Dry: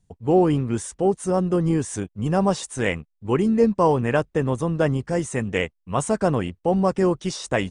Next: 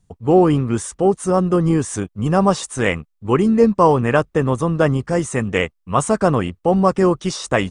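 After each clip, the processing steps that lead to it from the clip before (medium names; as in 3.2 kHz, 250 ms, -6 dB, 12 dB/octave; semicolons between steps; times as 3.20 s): peaking EQ 1.2 kHz +6.5 dB 0.34 oct; trim +4.5 dB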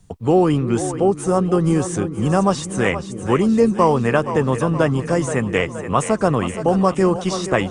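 two-band feedback delay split 360 Hz, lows 324 ms, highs 473 ms, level -12 dB; three bands compressed up and down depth 40%; trim -1.5 dB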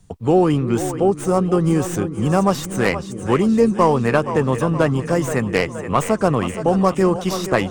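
tracing distortion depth 0.056 ms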